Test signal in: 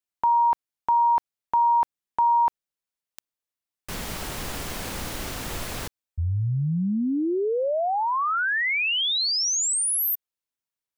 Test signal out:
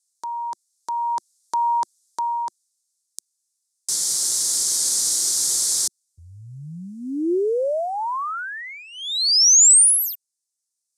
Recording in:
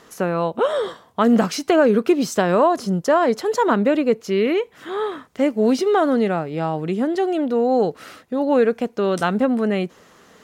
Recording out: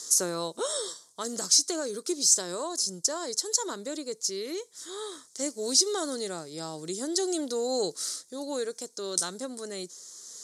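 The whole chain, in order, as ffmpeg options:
ffmpeg -i in.wav -af "aexciter=amount=15.9:drive=9.6:freq=4400,highpass=160,equalizer=frequency=220:width_type=q:width=4:gain=-9,equalizer=frequency=350:width_type=q:width=4:gain=4,equalizer=frequency=750:width_type=q:width=4:gain=-5,lowpass=frequency=9300:width=0.5412,lowpass=frequency=9300:width=1.3066,dynaudnorm=framelen=340:gausssize=7:maxgain=16dB,volume=-8dB" out.wav

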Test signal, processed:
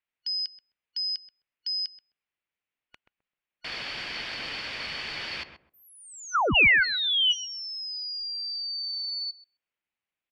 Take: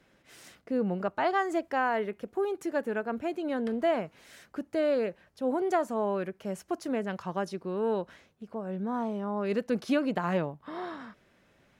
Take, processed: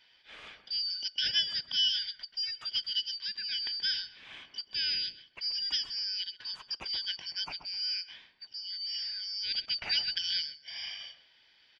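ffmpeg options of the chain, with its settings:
ffmpeg -i in.wav -filter_complex "[0:a]afftfilt=real='real(if(lt(b,272),68*(eq(floor(b/68),0)*3+eq(floor(b/68),1)*2+eq(floor(b/68),2)*1+eq(floor(b/68),3)*0)+mod(b,68),b),0)':imag='imag(if(lt(b,272),68*(eq(floor(b/68),0)*3+eq(floor(b/68),1)*2+eq(floor(b/68),2)*1+eq(floor(b/68),3)*0)+mod(b,68),b),0)':win_size=2048:overlap=0.75,lowpass=frequency=2500:width_type=q:width=2.3,asplit=2[link_01][link_02];[link_02]adelay=130,lowpass=frequency=1000:poles=1,volume=-7dB,asplit=2[link_03][link_04];[link_04]adelay=130,lowpass=frequency=1000:poles=1,volume=0.22,asplit=2[link_05][link_06];[link_06]adelay=130,lowpass=frequency=1000:poles=1,volume=0.22[link_07];[link_01][link_03][link_05][link_07]amix=inputs=4:normalize=0,volume=4dB" out.wav

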